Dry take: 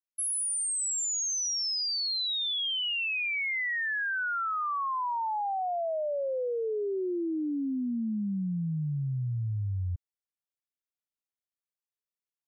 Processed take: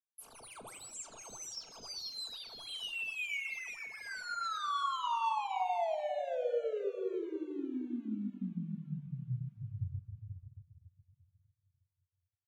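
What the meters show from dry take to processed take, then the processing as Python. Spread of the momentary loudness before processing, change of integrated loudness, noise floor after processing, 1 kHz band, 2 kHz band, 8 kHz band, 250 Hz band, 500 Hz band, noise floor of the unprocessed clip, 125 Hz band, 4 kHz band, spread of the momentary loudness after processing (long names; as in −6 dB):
5 LU, −8.5 dB, below −85 dBFS, −3.5 dB, −10.5 dB, −18.0 dB, −8.0 dB, −4.5 dB, below −85 dBFS, −9.5 dB, −12.5 dB, 14 LU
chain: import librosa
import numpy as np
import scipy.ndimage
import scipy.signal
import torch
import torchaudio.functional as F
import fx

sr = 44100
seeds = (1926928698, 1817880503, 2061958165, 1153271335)

p1 = scipy.ndimage.median_filter(x, 25, mode='constant')
p2 = scipy.signal.sosfilt(scipy.signal.butter(2, 7700.0, 'lowpass', fs=sr, output='sos'), p1)
p3 = fx.low_shelf(p2, sr, hz=160.0, db=-10.0)
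p4 = fx.notch(p3, sr, hz=1900.0, q=8.2)
p5 = fx.vibrato(p4, sr, rate_hz=2.3, depth_cents=33.0)
p6 = fx.peak_eq(p5, sr, hz=240.0, db=-7.5, octaves=2.4)
p7 = p6 + fx.echo_single(p6, sr, ms=488, db=-7.5, dry=0)
p8 = fx.room_shoebox(p7, sr, seeds[0], volume_m3=1400.0, walls='mixed', distance_m=1.6)
p9 = fx.dereverb_blind(p8, sr, rt60_s=0.62)
y = p9 * librosa.db_to_amplitude(-1.0)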